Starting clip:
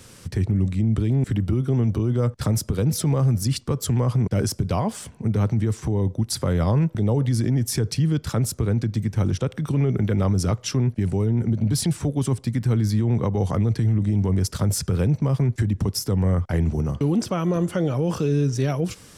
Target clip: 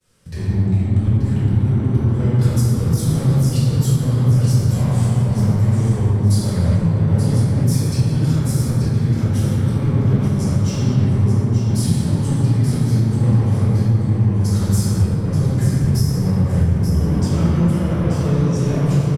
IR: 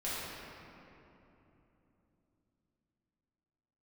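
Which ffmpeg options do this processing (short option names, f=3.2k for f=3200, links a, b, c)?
-filter_complex "[0:a]agate=range=-33dB:threshold=-35dB:ratio=3:detection=peak,acrossover=split=190|5400[a][b][c];[b]asoftclip=type=tanh:threshold=-31dB[d];[a][d][c]amix=inputs=3:normalize=0[e];[1:a]atrim=start_sample=2205,asetrate=37485,aresample=44100[f];[e][f]afir=irnorm=-1:irlink=0,alimiter=limit=-7.5dB:level=0:latency=1:release=462,aecho=1:1:882|1764|2646|3528:0.422|0.127|0.038|0.0114"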